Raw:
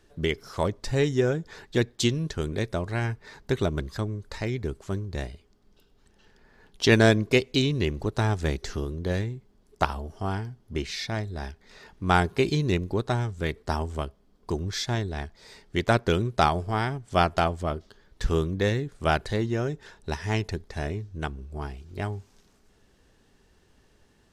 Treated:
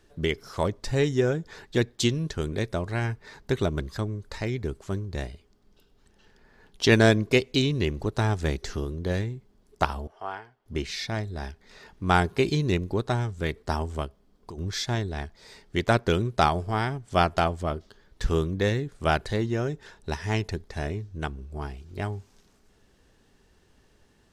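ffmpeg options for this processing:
-filter_complex "[0:a]asettb=1/sr,asplit=3[a][b][c];[a]atrim=end=10.074[d];[b]atrim=start=10.07:end=10.66,asetpts=PTS-STARTPTS,afade=t=in:d=0.004:c=qsin,afade=t=out:st=0.586:d=0.004:c=qsin,acrossover=split=480 3200:gain=0.0631 1 0.141[e][f][g];[e][f][g]amix=inputs=3:normalize=0[h];[c]atrim=start=10.656[i];[d][h]acrossfade=d=0.004:c1=hsin:c2=qsin[j];[j][i]acrossfade=d=0.004:c1=qsin:c2=hsin,asplit=3[k][l][m];[k]afade=t=out:st=14.06:d=0.02[n];[l]acompressor=threshold=-36dB:ratio=12:attack=3.2:release=140:knee=1:detection=peak,afade=t=in:st=14.06:d=0.02,afade=t=out:st=14.57:d=0.02[o];[m]afade=t=in:st=14.57:d=0.02[p];[n][o][p]amix=inputs=3:normalize=0"

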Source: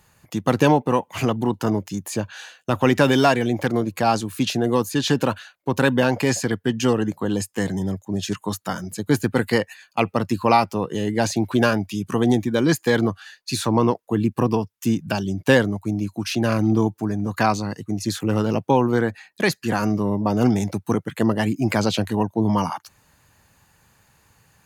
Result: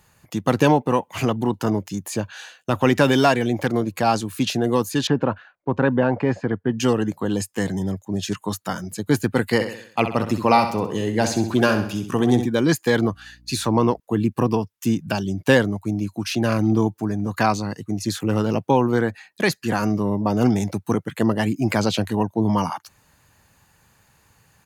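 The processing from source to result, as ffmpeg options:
-filter_complex "[0:a]asettb=1/sr,asplit=3[a][b][c];[a]atrim=end=5.074[d];[b]atrim=start=5.07:end=6.79,asetpts=PTS-STARTPTS,afade=t=in:d=0.004:c=qsin,afade=t=out:st=1.716:d=0.004:c=qsin,lowpass=1.5k[e];[c]atrim=start=6.786[f];[d][e]acrossfade=d=0.004:c1=hsin:c2=qsin[g];[g][f]acrossfade=d=0.004:c1=qsin:c2=hsin,asplit=3[h][i][j];[h]afade=t=out:st=9.59:d=0.02[k];[i]aecho=1:1:65|130|195|260|325:0.355|0.163|0.0751|0.0345|0.0159,afade=t=in:st=9.59:d=0.02,afade=t=out:st=12.45:d=0.02[l];[j]afade=t=in:st=12.45:d=0.02[m];[k][l][m]amix=inputs=3:normalize=0,asettb=1/sr,asplit=3[n][o][p];[n]atrim=end=13.034[q];[o]atrim=start=13.03:end=14,asetpts=PTS-STARTPTS,afade=t=in:d=0.004:c=qsin,afade=t=out:st=0.966:d=0.004:c=qsin,aeval=exprs='val(0)+0.00282*(sin(2*PI*60*n/s)+sin(2*PI*2*60*n/s)/2+sin(2*PI*3*60*n/s)/3+sin(2*PI*4*60*n/s)/4+sin(2*PI*5*60*n/s)/5)':c=same[r];[p]atrim=start=13.996[s];[q][r]acrossfade=d=0.004:c1=hsin:c2=qsin[t];[t][s]acrossfade=d=0.004:c1=qsin:c2=hsin"

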